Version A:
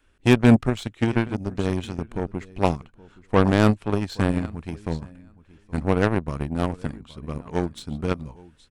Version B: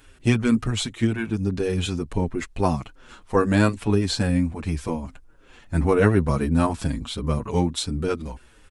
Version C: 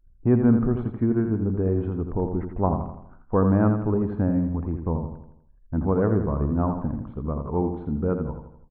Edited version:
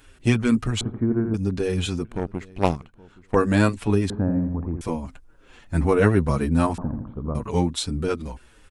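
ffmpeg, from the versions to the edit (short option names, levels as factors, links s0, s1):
-filter_complex "[2:a]asplit=3[s0][s1][s2];[1:a]asplit=5[s3][s4][s5][s6][s7];[s3]atrim=end=0.812[s8];[s0]atrim=start=0.808:end=1.342[s9];[s4]atrim=start=1.338:end=2.052[s10];[0:a]atrim=start=2.048:end=3.352[s11];[s5]atrim=start=3.348:end=4.102[s12];[s1]atrim=start=4.098:end=4.812[s13];[s6]atrim=start=4.808:end=6.782[s14];[s2]atrim=start=6.778:end=7.352[s15];[s7]atrim=start=7.348[s16];[s8][s9]acrossfade=d=0.004:c1=hsin:c2=hsin[s17];[s17][s10]acrossfade=d=0.004:c1=hsin:c2=hsin[s18];[s18][s11]acrossfade=d=0.004:c1=hsin:c2=hsin[s19];[s19][s12]acrossfade=d=0.004:c1=hsin:c2=hsin[s20];[s20][s13]acrossfade=d=0.004:c1=hsin:c2=hsin[s21];[s21][s14]acrossfade=d=0.004:c1=hsin:c2=hsin[s22];[s22][s15]acrossfade=d=0.004:c1=hsin:c2=hsin[s23];[s23][s16]acrossfade=d=0.004:c1=hsin:c2=hsin"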